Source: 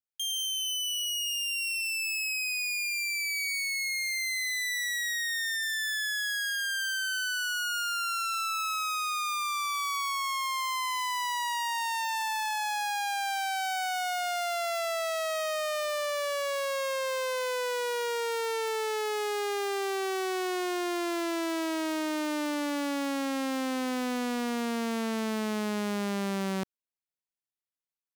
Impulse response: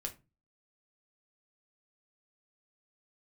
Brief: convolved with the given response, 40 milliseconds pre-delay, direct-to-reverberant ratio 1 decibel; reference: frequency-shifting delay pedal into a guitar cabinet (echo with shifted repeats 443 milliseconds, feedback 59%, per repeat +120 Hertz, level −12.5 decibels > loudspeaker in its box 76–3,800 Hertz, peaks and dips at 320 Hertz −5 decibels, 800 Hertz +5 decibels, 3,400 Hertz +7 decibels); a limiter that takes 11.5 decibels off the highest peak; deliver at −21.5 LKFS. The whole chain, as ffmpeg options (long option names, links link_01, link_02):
-filter_complex "[0:a]alimiter=level_in=13.5dB:limit=-24dB:level=0:latency=1,volume=-13.5dB,asplit=2[link_01][link_02];[1:a]atrim=start_sample=2205,adelay=40[link_03];[link_02][link_03]afir=irnorm=-1:irlink=0,volume=0dB[link_04];[link_01][link_04]amix=inputs=2:normalize=0,asplit=8[link_05][link_06][link_07][link_08][link_09][link_10][link_11][link_12];[link_06]adelay=443,afreqshift=120,volume=-12.5dB[link_13];[link_07]adelay=886,afreqshift=240,volume=-17.1dB[link_14];[link_08]adelay=1329,afreqshift=360,volume=-21.7dB[link_15];[link_09]adelay=1772,afreqshift=480,volume=-26.2dB[link_16];[link_10]adelay=2215,afreqshift=600,volume=-30.8dB[link_17];[link_11]adelay=2658,afreqshift=720,volume=-35.4dB[link_18];[link_12]adelay=3101,afreqshift=840,volume=-40dB[link_19];[link_05][link_13][link_14][link_15][link_16][link_17][link_18][link_19]amix=inputs=8:normalize=0,highpass=76,equalizer=frequency=320:width_type=q:width=4:gain=-5,equalizer=frequency=800:width_type=q:width=4:gain=5,equalizer=frequency=3400:width_type=q:width=4:gain=7,lowpass=frequency=3800:width=0.5412,lowpass=frequency=3800:width=1.3066,volume=16dB"